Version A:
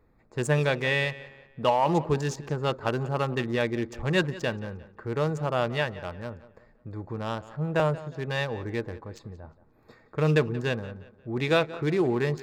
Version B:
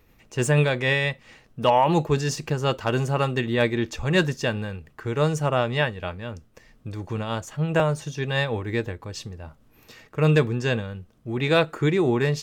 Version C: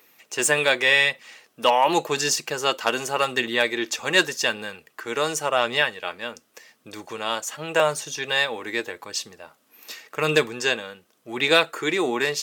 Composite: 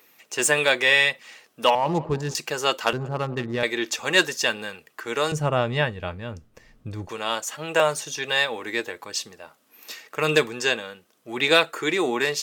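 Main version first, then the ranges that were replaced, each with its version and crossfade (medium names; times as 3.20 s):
C
1.75–2.35 s: from A
2.93–3.63 s: from A
5.32–7.09 s: from B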